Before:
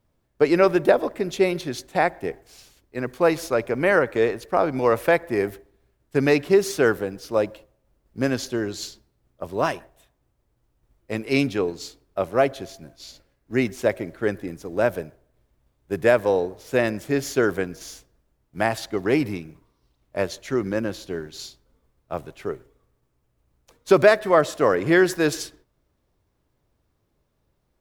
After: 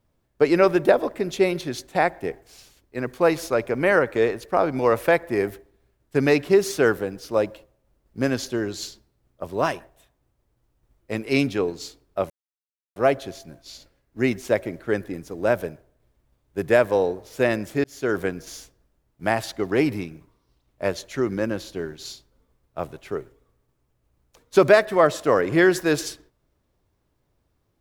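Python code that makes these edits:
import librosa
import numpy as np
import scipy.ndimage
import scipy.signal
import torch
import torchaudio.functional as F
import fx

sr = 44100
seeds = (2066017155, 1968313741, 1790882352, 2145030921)

y = fx.edit(x, sr, fx.insert_silence(at_s=12.3, length_s=0.66),
    fx.fade_in_span(start_s=17.18, length_s=0.37), tone=tone)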